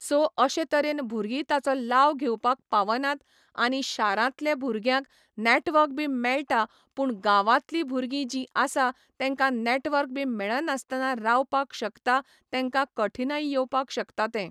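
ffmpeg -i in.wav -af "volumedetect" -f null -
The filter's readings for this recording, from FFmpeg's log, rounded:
mean_volume: -26.3 dB
max_volume: -8.0 dB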